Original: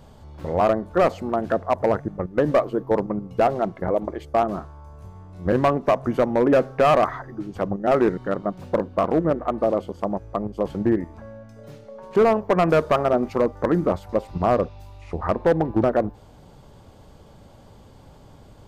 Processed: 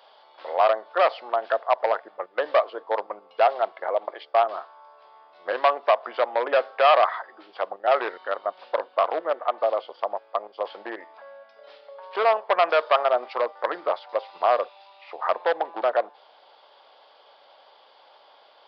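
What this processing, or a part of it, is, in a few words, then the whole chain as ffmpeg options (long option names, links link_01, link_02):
musical greeting card: -af "aresample=11025,aresample=44100,highpass=frequency=610:width=0.5412,highpass=frequency=610:width=1.3066,equalizer=frequency=3300:width_type=o:width=0.41:gain=5.5,volume=2dB"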